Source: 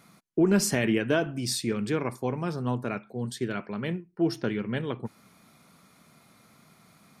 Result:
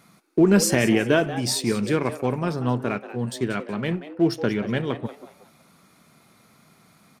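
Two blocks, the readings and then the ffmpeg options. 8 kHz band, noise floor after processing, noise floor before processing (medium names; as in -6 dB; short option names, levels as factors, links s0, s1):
+5.0 dB, -57 dBFS, -60 dBFS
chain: -filter_complex "[0:a]asplit=2[s0][s1];[s1]aeval=exprs='sgn(val(0))*max(abs(val(0))-0.00794,0)':c=same,volume=0.596[s2];[s0][s2]amix=inputs=2:normalize=0,asplit=4[s3][s4][s5][s6];[s4]adelay=184,afreqshift=140,volume=0.2[s7];[s5]adelay=368,afreqshift=280,volume=0.0617[s8];[s6]adelay=552,afreqshift=420,volume=0.0193[s9];[s3][s7][s8][s9]amix=inputs=4:normalize=0,volume=1.19"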